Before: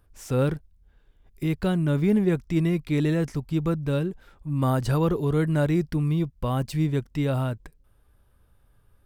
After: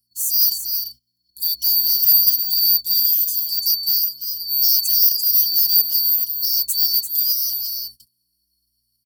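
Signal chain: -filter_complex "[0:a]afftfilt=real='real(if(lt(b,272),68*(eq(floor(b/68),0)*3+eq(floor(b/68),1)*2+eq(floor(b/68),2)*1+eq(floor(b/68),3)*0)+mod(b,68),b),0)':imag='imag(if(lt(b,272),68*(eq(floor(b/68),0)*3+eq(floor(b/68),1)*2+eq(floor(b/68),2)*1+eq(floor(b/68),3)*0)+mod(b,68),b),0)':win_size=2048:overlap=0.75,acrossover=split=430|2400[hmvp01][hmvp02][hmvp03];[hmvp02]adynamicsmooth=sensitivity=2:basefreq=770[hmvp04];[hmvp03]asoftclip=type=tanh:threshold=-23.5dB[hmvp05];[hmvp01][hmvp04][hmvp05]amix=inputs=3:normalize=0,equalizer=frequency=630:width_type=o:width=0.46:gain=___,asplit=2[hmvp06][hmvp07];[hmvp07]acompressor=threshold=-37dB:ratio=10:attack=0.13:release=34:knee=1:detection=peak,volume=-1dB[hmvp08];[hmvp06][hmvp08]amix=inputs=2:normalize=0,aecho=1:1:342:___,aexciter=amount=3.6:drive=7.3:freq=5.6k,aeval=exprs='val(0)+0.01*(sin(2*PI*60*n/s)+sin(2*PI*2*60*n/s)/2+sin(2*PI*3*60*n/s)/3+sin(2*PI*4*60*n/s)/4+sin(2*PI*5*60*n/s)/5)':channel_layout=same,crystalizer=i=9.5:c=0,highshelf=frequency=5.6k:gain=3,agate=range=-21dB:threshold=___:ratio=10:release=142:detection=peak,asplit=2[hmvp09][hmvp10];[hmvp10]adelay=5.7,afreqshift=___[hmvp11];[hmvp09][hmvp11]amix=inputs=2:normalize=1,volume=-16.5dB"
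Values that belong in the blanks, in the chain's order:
-3, 0.422, -24dB, -1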